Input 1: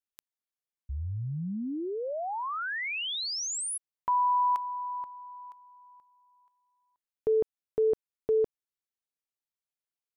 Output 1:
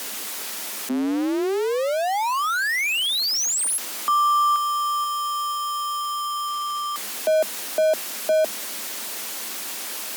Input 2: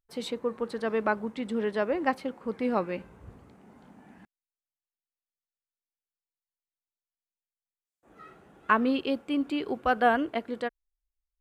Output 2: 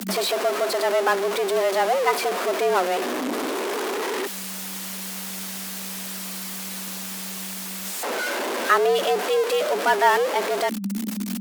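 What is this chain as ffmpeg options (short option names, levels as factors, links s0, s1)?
-af "aeval=exprs='val(0)+0.5*0.0668*sgn(val(0))':c=same,afreqshift=190,volume=1.41" -ar 48000 -c:a libmp3lame -b:a 112k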